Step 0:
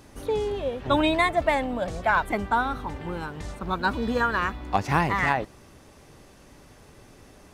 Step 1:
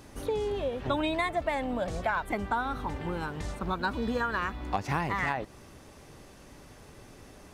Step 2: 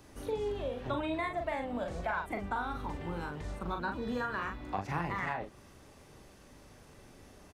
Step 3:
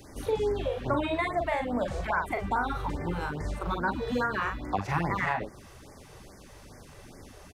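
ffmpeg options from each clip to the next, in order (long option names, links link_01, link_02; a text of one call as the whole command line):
ffmpeg -i in.wav -af "acompressor=threshold=-28dB:ratio=3" out.wav
ffmpeg -i in.wav -filter_complex "[0:a]acrossover=split=340|1300|2600[link_01][link_02][link_03][link_04];[link_04]alimiter=level_in=16.5dB:limit=-24dB:level=0:latency=1:release=308,volume=-16.5dB[link_05];[link_01][link_02][link_03][link_05]amix=inputs=4:normalize=0,asplit=2[link_06][link_07];[link_07]adelay=41,volume=-5dB[link_08];[link_06][link_08]amix=inputs=2:normalize=0,volume=-6dB" out.wav
ffmpeg -i in.wav -af "afftfilt=real='re*(1-between(b*sr/1024,210*pow(3400/210,0.5+0.5*sin(2*PI*2.4*pts/sr))/1.41,210*pow(3400/210,0.5+0.5*sin(2*PI*2.4*pts/sr))*1.41))':imag='im*(1-between(b*sr/1024,210*pow(3400/210,0.5+0.5*sin(2*PI*2.4*pts/sr))/1.41,210*pow(3400/210,0.5+0.5*sin(2*PI*2.4*pts/sr))*1.41))':win_size=1024:overlap=0.75,volume=7dB" out.wav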